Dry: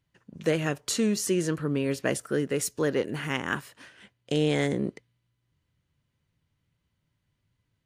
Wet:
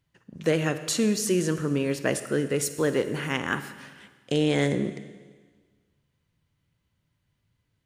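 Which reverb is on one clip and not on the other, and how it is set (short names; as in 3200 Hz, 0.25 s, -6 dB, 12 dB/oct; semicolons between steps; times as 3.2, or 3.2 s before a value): Schroeder reverb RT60 1.5 s, DRR 11 dB; gain +1.5 dB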